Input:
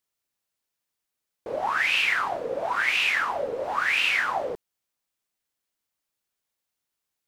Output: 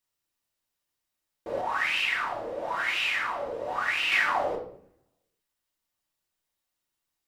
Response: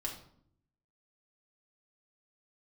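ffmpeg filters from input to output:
-filter_complex "[1:a]atrim=start_sample=2205[link_01];[0:a][link_01]afir=irnorm=-1:irlink=0,asettb=1/sr,asplit=3[link_02][link_03][link_04];[link_02]atrim=end=1.614[link_05];[link_03]atrim=start=1.61:end=4.12,asetpts=PTS-STARTPTS,afade=type=in:duration=0.004:curve=qsin,afade=type=out:start_time=2.506:duration=0.004:curve=qsin,flanger=delay=7.9:depth=5.2:regen=84:speed=1.4:shape=sinusoidal[link_06];[link_04]atrim=start=4.116[link_07];[link_05][link_06]acrossfade=duration=0.004:curve1=hsin:curve2=qsin[link_08];[link_08][link_07]acrossfade=duration=0.004:curve1=qsin:curve2=hsin"

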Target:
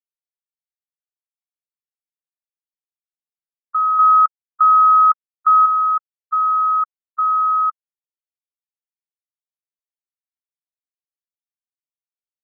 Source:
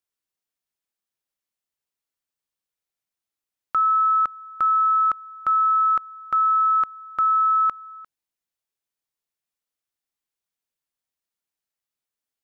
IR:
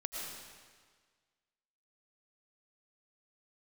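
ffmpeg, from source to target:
-filter_complex "[0:a]afreqshift=-30,asettb=1/sr,asplit=3[link_01][link_02][link_03];[link_01]atrim=end=3.994[link_04];[link_02]atrim=start=3.99:end=5.66,asetpts=PTS-STARTPTS,afade=type=in:duration=0.004:curve=qsin,afade=type=out:start_time=1.666:duration=0.004:curve=qsin,equalizer=frequency=580:width=0.72:gain=14[link_05];[link_03]atrim=start=5.656[link_06];[link_04][link_05]acrossfade=duration=0.004:curve1=hsin:curve2=qsin[link_07];[link_07][link_06]acrossfade=duration=0.004:curve1=qsin:curve2=hsin,afftfilt=real='re*gte(hypot(re,im),0.224)':imag='im*gte(hypot(re,im),0.224)':win_size=1024:overlap=0.75,volume=2dB"

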